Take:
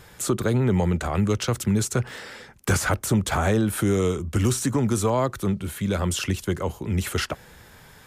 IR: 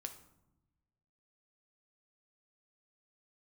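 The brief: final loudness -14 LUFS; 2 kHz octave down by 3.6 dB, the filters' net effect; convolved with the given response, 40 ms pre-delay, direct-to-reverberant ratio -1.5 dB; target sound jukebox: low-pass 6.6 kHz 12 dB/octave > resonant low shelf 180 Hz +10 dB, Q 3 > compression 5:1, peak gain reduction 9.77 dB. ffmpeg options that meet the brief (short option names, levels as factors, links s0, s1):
-filter_complex "[0:a]equalizer=f=2000:t=o:g=-5,asplit=2[s0][s1];[1:a]atrim=start_sample=2205,adelay=40[s2];[s1][s2]afir=irnorm=-1:irlink=0,volume=1.78[s3];[s0][s3]amix=inputs=2:normalize=0,lowpass=6600,lowshelf=f=180:t=q:w=3:g=10,acompressor=threshold=0.447:ratio=5,volume=0.944"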